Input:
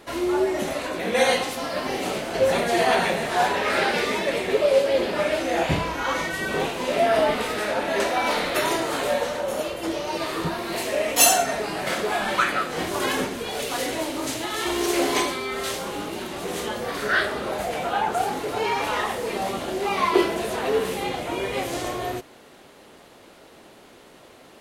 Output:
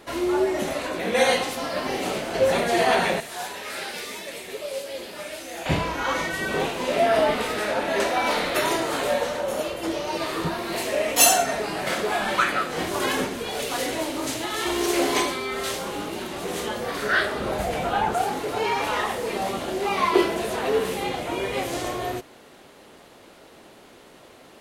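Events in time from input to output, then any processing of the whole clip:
0:03.20–0:05.66: first-order pre-emphasis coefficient 0.8
0:17.40–0:18.15: low-shelf EQ 150 Hz +11.5 dB

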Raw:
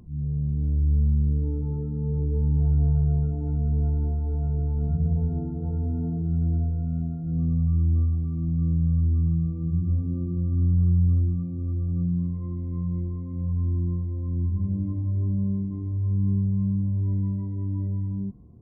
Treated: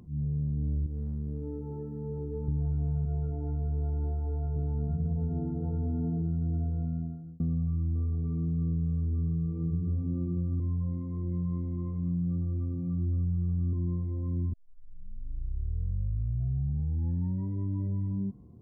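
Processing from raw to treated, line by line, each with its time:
0:00.86–0:02.48: bass and treble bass −10 dB, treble +7 dB
0:03.05–0:04.56: parametric band 200 Hz −14.5 dB 0.65 octaves
0:06.83–0:07.40: fade out
0:07.94–0:09.95: steady tone 430 Hz −50 dBFS
0:10.60–0:13.73: reverse
0:14.53: tape start 2.96 s
whole clip: high-pass filter 90 Hz 6 dB per octave; notch filter 650 Hz, Q 20; downward compressor, threshold −26 dBFS

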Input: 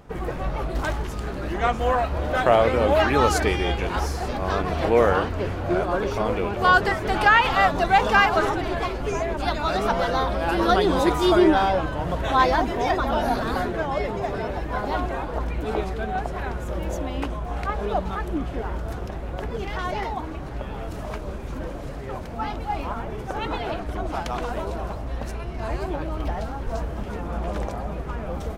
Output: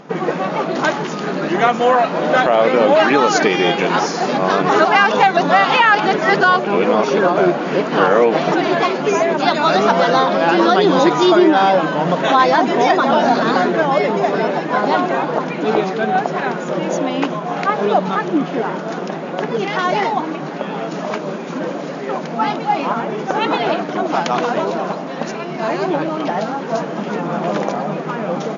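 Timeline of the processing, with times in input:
0:04.69–0:08.52: reverse
whole clip: brick-wall band-pass 140–7,100 Hz; downward compressor 3 to 1, threshold −21 dBFS; boost into a limiter +12.5 dB; level −1 dB

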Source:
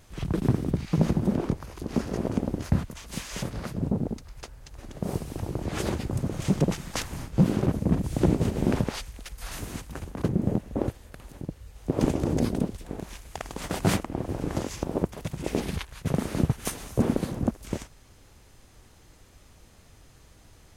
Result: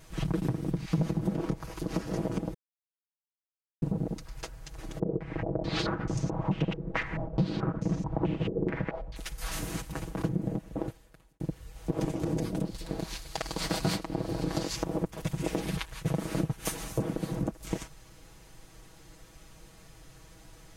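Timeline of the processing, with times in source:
0:02.54–0:03.82: silence
0:04.99–0:09.16: low-pass on a step sequencer 4.6 Hz 440–6,100 Hz
0:10.17–0:11.40: fade out
0:12.65–0:14.76: parametric band 4,400 Hz +11 dB 0.5 octaves
whole clip: downward compressor 6 to 1, threshold −28 dBFS; comb filter 6.2 ms, depth 77%

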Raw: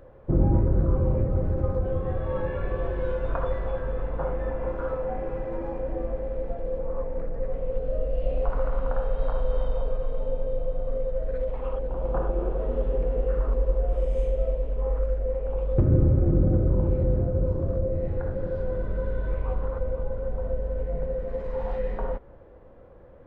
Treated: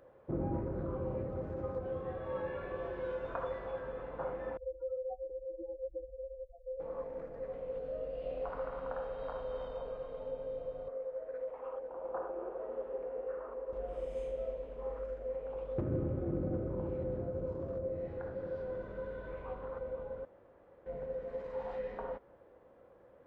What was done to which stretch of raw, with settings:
0:04.57–0:06.80: expanding power law on the bin magnitudes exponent 3.5
0:10.88–0:13.73: three-way crossover with the lows and the highs turned down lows −16 dB, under 330 Hz, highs −18 dB, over 2,100 Hz
0:20.25–0:20.86: fill with room tone
whole clip: high-pass filter 330 Hz 6 dB per octave; level −6.5 dB

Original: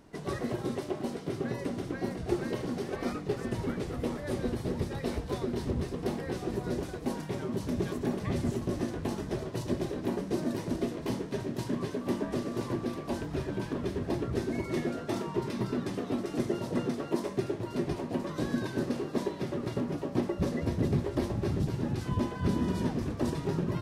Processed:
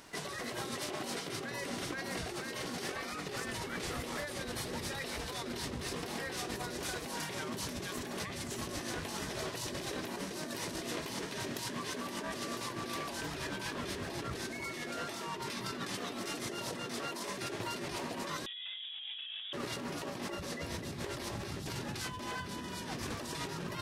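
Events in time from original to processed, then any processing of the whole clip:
0:18.46–0:19.53: voice inversion scrambler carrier 3,600 Hz
whole clip: tilt shelving filter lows −9.5 dB, about 790 Hz; brickwall limiter −26.5 dBFS; compressor whose output falls as the input rises −41 dBFS, ratio −1; level +1 dB

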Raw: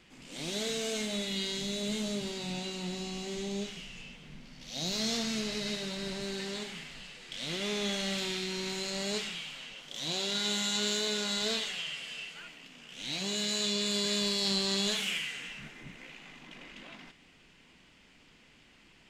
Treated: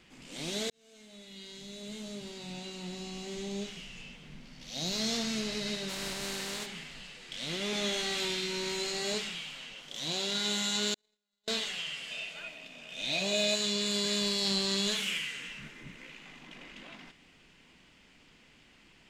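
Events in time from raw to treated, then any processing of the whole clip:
0:00.70–0:04.06: fade in
0:05.88–0:06.65: compressing power law on the bin magnitudes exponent 0.58
0:07.71–0:09.14: double-tracking delay 18 ms −3 dB
0:10.94–0:11.48: noise gate −27 dBFS, range −55 dB
0:12.10–0:13.54: hollow resonant body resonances 630/2,500/3,600 Hz, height 13 dB → 16 dB, ringing for 35 ms
0:14.66–0:16.26: parametric band 740 Hz −8 dB 0.24 octaves

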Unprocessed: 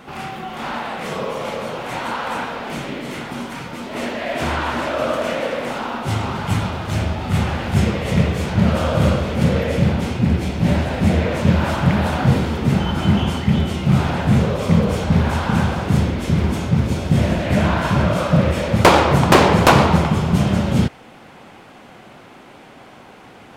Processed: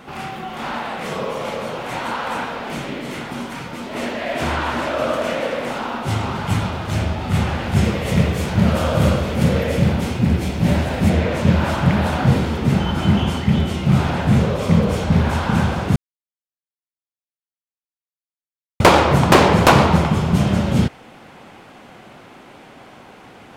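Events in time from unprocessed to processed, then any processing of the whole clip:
0:07.84–0:11.10: high-shelf EQ 9,800 Hz +8 dB
0:15.96–0:18.80: silence

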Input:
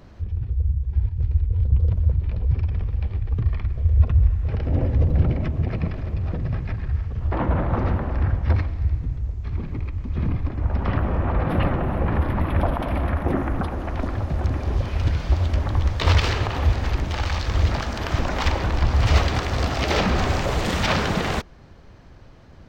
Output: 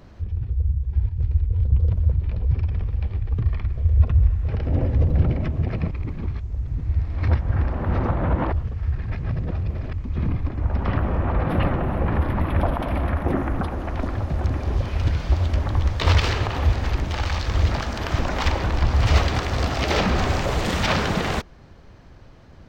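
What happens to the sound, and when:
0:05.91–0:09.93: reverse

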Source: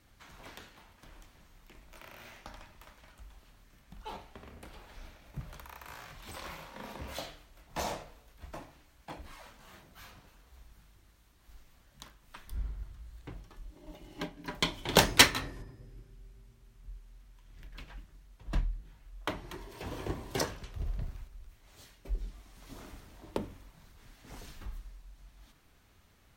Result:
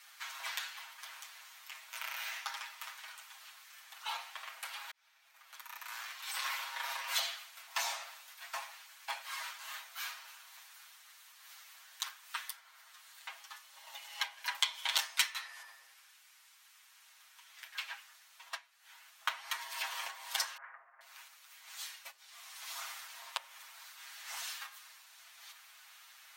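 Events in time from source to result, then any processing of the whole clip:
0:04.91–0:07.09: fade in
0:15.93–0:16.91: high-pass filter 820 Hz 6 dB per octave
0:20.57–0:21.01: Butterworth low-pass 1,900 Hz 48 dB per octave
whole clip: downward compressor 16 to 1, threshold −39 dBFS; Bessel high-pass filter 1,400 Hz, order 8; comb filter 7.4 ms, depth 87%; level +11 dB

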